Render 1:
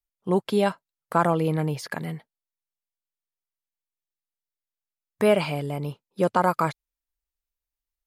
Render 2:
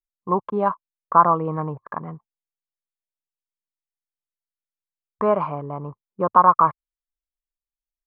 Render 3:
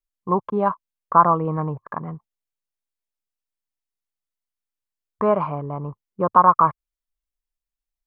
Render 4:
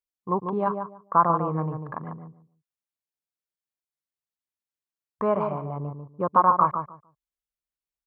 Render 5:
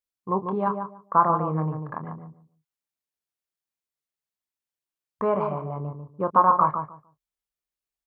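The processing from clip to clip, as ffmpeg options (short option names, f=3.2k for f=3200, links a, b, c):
-af "lowpass=f=1.1k:t=q:w=9.4,anlmdn=3.98,volume=-3dB"
-af "lowshelf=f=120:g=8"
-filter_complex "[0:a]highpass=57,asplit=2[a][b];[b]adelay=146,lowpass=f=1k:p=1,volume=-5dB,asplit=2[c][d];[d]adelay=146,lowpass=f=1k:p=1,volume=0.21,asplit=2[e][f];[f]adelay=146,lowpass=f=1k:p=1,volume=0.21[g];[c][e][g]amix=inputs=3:normalize=0[h];[a][h]amix=inputs=2:normalize=0,volume=-5dB"
-filter_complex "[0:a]asplit=2[a][b];[b]adelay=26,volume=-10dB[c];[a][c]amix=inputs=2:normalize=0"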